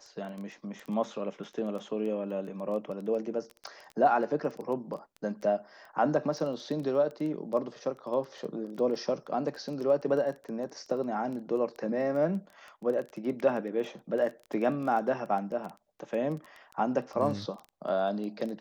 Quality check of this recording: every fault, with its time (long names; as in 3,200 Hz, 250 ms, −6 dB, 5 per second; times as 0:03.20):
surface crackle 12 per second −35 dBFS